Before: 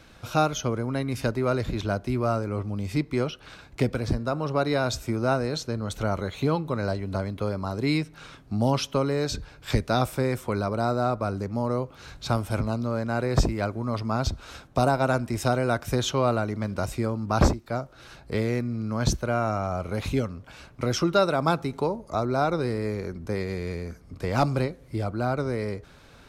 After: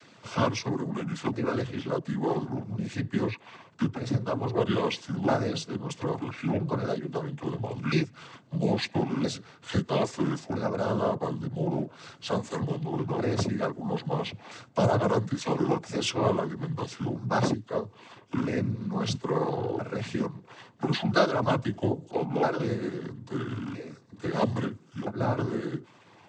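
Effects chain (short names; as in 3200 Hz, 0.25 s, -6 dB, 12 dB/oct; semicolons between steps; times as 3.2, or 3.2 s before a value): repeated pitch sweeps -9.5 st, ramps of 1.319 s; noise vocoder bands 16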